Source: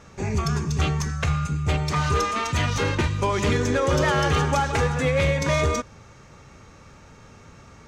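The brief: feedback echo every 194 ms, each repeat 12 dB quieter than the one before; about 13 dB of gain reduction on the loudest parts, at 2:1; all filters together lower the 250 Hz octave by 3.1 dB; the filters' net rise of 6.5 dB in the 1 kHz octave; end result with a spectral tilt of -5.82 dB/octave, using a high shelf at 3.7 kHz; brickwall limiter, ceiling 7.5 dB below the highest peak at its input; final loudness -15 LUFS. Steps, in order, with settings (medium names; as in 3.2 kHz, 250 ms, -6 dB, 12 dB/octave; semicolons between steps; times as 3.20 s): peaking EQ 250 Hz -6 dB; peaking EQ 1 kHz +9 dB; treble shelf 3.7 kHz -7 dB; compression 2:1, threshold -39 dBFS; peak limiter -27.5 dBFS; feedback delay 194 ms, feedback 25%, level -12 dB; trim +21.5 dB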